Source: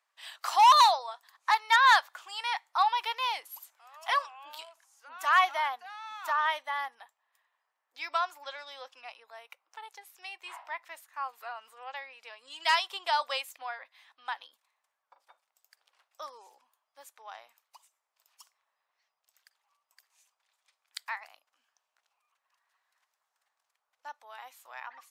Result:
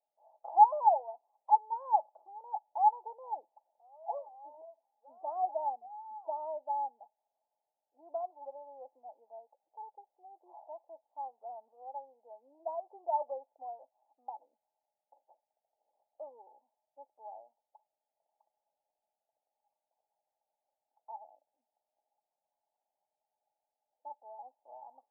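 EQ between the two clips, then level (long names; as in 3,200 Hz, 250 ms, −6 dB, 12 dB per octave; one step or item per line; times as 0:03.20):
high-pass filter 320 Hz 6 dB per octave
Chebyshev low-pass with heavy ripple 880 Hz, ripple 6 dB
+5.0 dB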